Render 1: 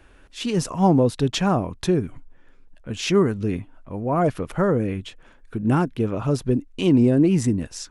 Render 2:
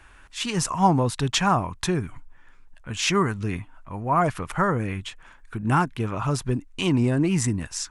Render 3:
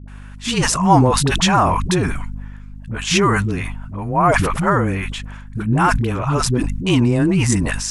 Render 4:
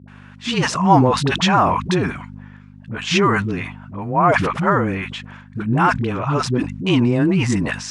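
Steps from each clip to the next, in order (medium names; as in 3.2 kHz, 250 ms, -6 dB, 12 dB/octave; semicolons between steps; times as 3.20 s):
ten-band graphic EQ 250 Hz -5 dB, 500 Hz -8 dB, 1 kHz +7 dB, 2 kHz +4 dB, 8 kHz +6 dB
phase dispersion highs, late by 81 ms, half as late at 410 Hz; hum 50 Hz, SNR 18 dB; decay stretcher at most 32 dB/s; trim +5.5 dB
band-pass 120–4600 Hz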